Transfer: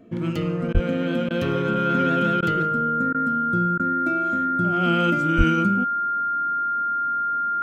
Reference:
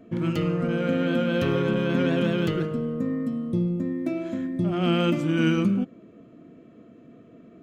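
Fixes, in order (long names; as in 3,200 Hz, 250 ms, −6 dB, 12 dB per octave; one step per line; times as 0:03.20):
notch filter 1,400 Hz, Q 30
high-pass at the plosives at 0:00.73/0:05.37
repair the gap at 0:00.73/0:01.29/0:02.41/0:03.13/0:03.78, 14 ms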